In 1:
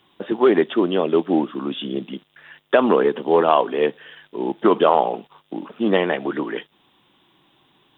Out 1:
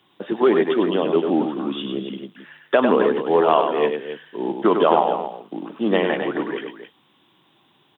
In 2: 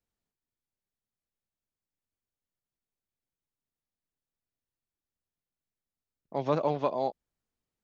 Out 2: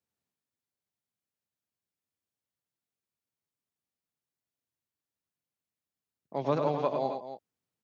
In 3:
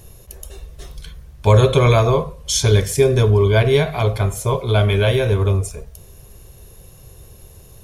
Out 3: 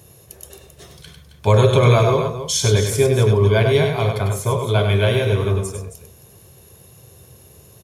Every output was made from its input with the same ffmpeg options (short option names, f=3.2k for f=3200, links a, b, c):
-filter_complex "[0:a]highpass=f=86:w=0.5412,highpass=f=86:w=1.3066,asplit=2[a][b];[b]aecho=0:1:99.13|268.2:0.501|0.282[c];[a][c]amix=inputs=2:normalize=0,volume=-1.5dB"